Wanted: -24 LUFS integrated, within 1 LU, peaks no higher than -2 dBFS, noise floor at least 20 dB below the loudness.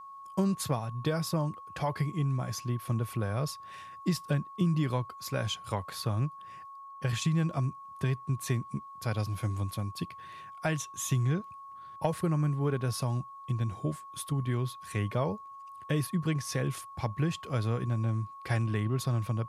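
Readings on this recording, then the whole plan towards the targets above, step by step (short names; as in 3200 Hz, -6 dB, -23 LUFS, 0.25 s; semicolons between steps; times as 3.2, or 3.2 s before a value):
steady tone 1100 Hz; tone level -44 dBFS; loudness -32.5 LUFS; peak -16.5 dBFS; loudness target -24.0 LUFS
-> notch 1100 Hz, Q 30; gain +8.5 dB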